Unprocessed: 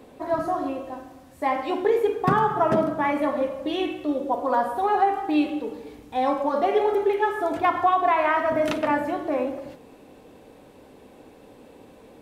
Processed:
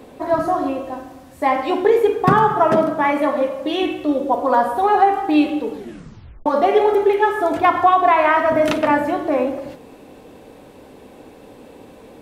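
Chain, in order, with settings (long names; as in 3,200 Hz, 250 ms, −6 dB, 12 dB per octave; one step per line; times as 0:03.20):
0:02.55–0:03.83: low-shelf EQ 140 Hz −10 dB
0:05.73: tape stop 0.73 s
level +6.5 dB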